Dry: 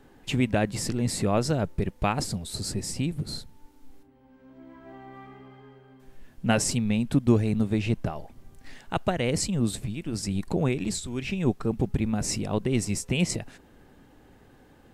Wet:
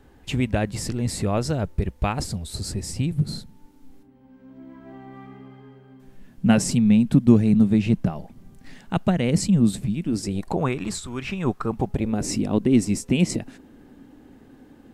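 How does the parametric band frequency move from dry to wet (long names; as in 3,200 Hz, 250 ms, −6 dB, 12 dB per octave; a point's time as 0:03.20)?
parametric band +11.5 dB 0.95 octaves
0:02.83 63 Hz
0:03.36 190 Hz
0:10.02 190 Hz
0:10.67 1,200 Hz
0:11.67 1,200 Hz
0:12.33 260 Hz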